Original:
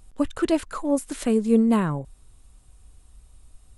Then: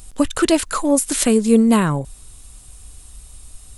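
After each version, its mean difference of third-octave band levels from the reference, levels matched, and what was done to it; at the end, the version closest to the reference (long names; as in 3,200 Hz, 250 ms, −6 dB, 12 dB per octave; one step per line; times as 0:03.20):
3.5 dB: high-shelf EQ 2,900 Hz +11.5 dB
in parallel at 0 dB: downward compressor, threshold −27 dBFS, peak gain reduction 13 dB
on the sum: level +3 dB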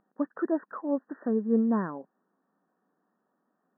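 7.0 dB: de-essing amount 65%
linear-phase brick-wall band-pass 170–1,900 Hz
level −6 dB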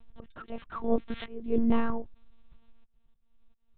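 10.0 dB: volume swells 642 ms
one-pitch LPC vocoder at 8 kHz 230 Hz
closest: first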